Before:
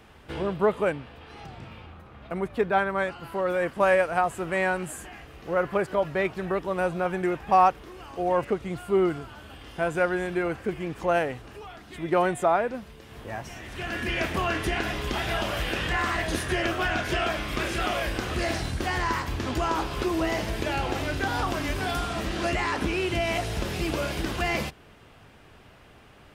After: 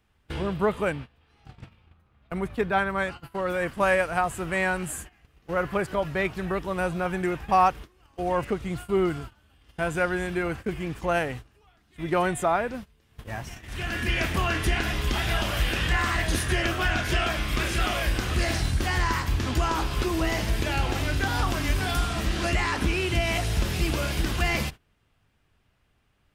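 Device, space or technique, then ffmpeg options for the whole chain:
smiley-face EQ: -af "lowshelf=f=94:g=7.5,equalizer=f=520:t=o:w=2:g=-5,highshelf=f=6.7k:g=4,agate=range=-19dB:threshold=-38dB:ratio=16:detection=peak,volume=2dB"

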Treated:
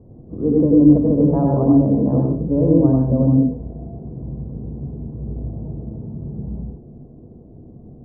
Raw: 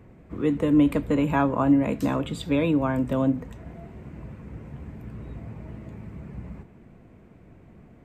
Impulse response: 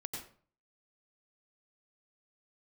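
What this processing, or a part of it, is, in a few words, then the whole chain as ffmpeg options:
next room: -filter_complex "[0:a]lowpass=f=670:w=0.5412,lowpass=f=670:w=1.3066[a];[1:a]atrim=start_sample=2205[b];[a][b]afir=irnorm=-1:irlink=0,volume=8dB"

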